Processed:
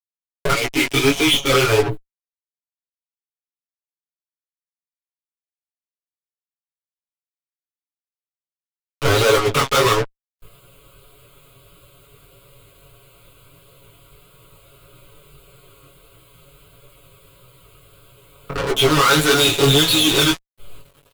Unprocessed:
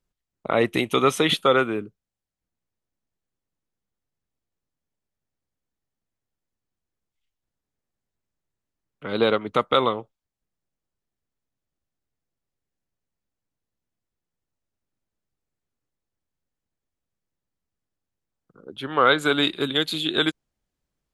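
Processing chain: flange 0.13 Hz, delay 4.9 ms, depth 5.8 ms, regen -73%; dynamic EQ 580 Hz, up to -8 dB, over -38 dBFS, Q 0.86; 0.53–1.5 vowel filter i; in parallel at -3 dB: backlash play -25.5 dBFS; on the sum: fixed phaser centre 1200 Hz, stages 8; compressor 1.5:1, threshold -53 dBFS, peak gain reduction 12.5 dB; fuzz box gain 60 dB, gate -55 dBFS; chorus 1.6 Hz, delay 15.5 ms, depth 6.7 ms; comb 7.2 ms, depth 96%

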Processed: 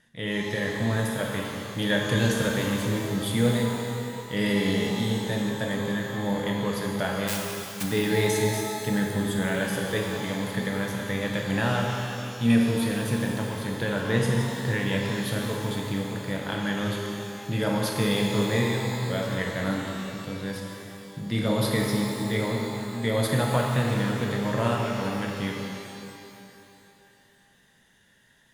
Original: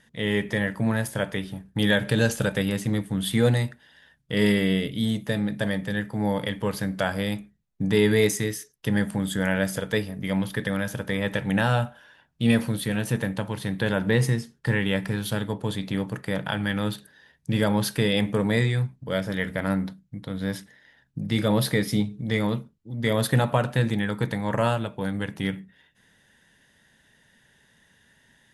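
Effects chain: 7.27–7.82 spectral whitening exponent 0.1; shimmer reverb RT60 2.7 s, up +12 st, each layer -8 dB, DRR -0.5 dB; gain -4.5 dB

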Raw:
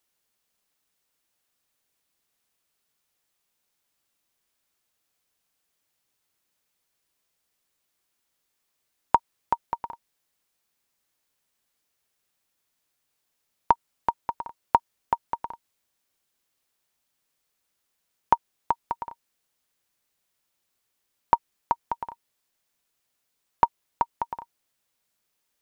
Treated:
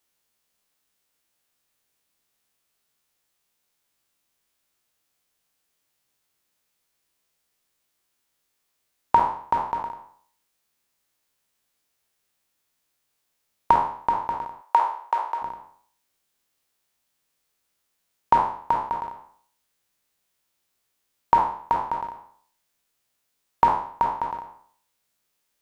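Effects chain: spectral trails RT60 0.56 s; 14.61–15.42 Bessel high-pass 600 Hz, order 8

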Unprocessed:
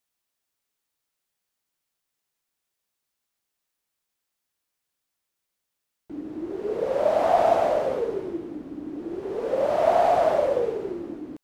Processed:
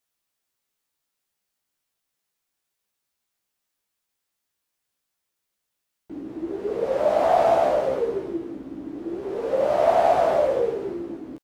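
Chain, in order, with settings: doubler 15 ms -5 dB

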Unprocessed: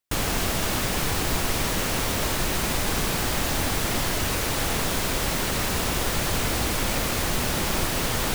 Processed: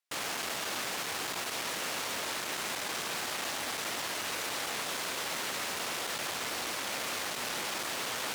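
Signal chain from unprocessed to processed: soft clip -26 dBFS, distortion -10 dB; weighting filter A; gain -3 dB

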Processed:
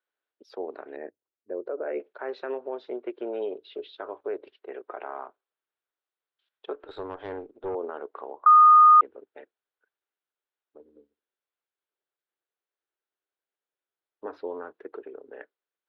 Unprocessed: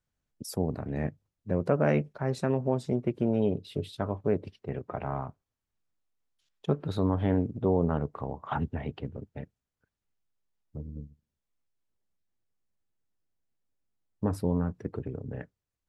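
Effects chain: 0.96–2 formant sharpening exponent 1.5; elliptic band-pass 370–3700 Hz, stop band 40 dB; bell 1500 Hz +5 dB 0.38 oct; 6.75–7.75 tube stage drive 23 dB, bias 0.65; limiter -23 dBFS, peak gain reduction 8 dB; 8.46–9.01 bleep 1230 Hz -10.5 dBFS

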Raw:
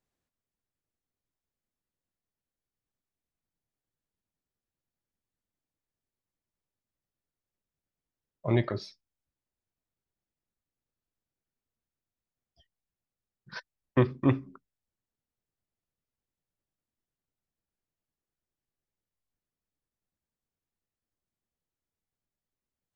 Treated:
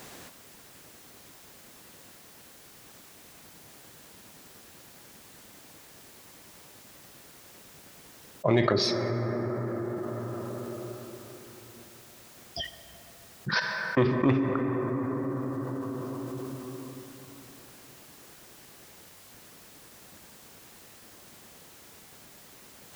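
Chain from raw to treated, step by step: HPF 230 Hz 6 dB/oct; in parallel at -10 dB: hard clip -25 dBFS, distortion -8 dB; on the sum: plate-style reverb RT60 3.7 s, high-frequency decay 0.35×, DRR 16.5 dB; fast leveller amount 70%

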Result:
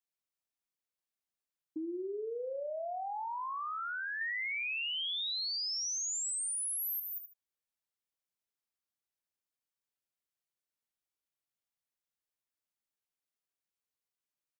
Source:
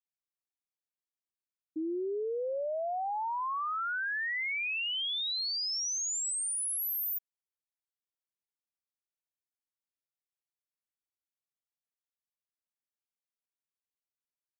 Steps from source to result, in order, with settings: 4.21–7 tilt shelf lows -9.5 dB, about 670 Hz; feedback echo 75 ms, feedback 18%, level -11 dB; compressor 4:1, threshold -37 dBFS, peak gain reduction 12 dB

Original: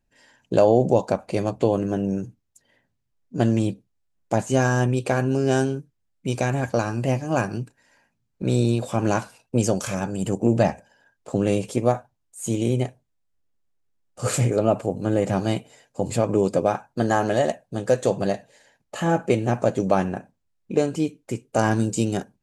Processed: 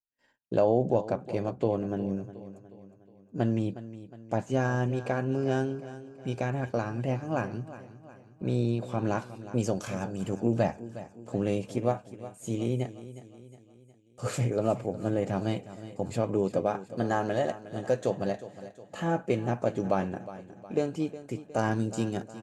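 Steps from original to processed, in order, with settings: gate -54 dBFS, range -30 dB; high shelf 5000 Hz -11.5 dB, from 9.18 s -4 dB; feedback echo 0.362 s, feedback 49%, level -15 dB; dynamic EQ 9200 Hz, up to -5 dB, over -53 dBFS, Q 1.4; gain -7 dB

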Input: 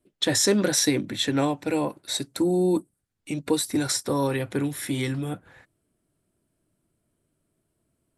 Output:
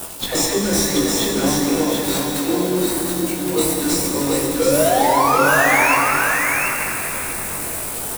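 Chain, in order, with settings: switching spikes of -20 dBFS; HPF 170 Hz 24 dB/oct; dispersion lows, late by 0.125 s, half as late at 410 Hz; painted sound rise, 4.59–5.95, 470–2800 Hz -19 dBFS; in parallel at -6 dB: decimation with a swept rate 20×, swing 100% 0.31 Hz; on the sum: doubler 21 ms -4.5 dB; on a send: echo 0.731 s -4 dB; on the sum: plate-style reverb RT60 4.5 s, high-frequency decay 0.75×, DRR 0.5 dB; gain -3 dB

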